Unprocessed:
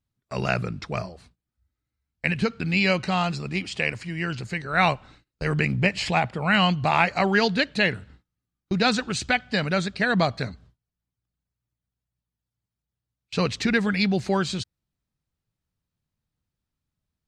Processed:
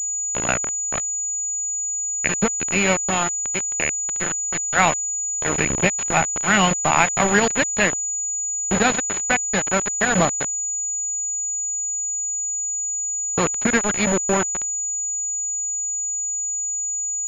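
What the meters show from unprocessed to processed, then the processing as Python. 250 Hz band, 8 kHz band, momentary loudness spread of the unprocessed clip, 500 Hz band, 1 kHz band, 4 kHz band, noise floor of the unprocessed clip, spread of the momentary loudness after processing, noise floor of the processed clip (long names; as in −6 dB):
0.0 dB, +27.0 dB, 11 LU, +2.5 dB, +3.5 dB, −1.0 dB, below −85 dBFS, 5 LU, −25 dBFS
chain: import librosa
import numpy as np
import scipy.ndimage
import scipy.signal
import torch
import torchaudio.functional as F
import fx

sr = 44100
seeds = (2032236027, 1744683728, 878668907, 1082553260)

y = fx.echo_diffused(x, sr, ms=1429, feedback_pct=41, wet_db=-11.0)
y = np.where(np.abs(y) >= 10.0 ** (-20.0 / 20.0), y, 0.0)
y = fx.pwm(y, sr, carrier_hz=6900.0)
y = y * 10.0 ** (4.0 / 20.0)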